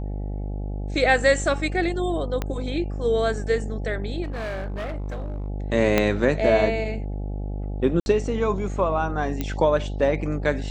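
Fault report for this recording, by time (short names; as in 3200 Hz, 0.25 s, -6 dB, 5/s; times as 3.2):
buzz 50 Hz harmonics 17 -29 dBFS
2.42 pop -12 dBFS
4.23–5.48 clipped -26.5 dBFS
5.98 pop -5 dBFS
8–8.06 gap 61 ms
9.41 pop -12 dBFS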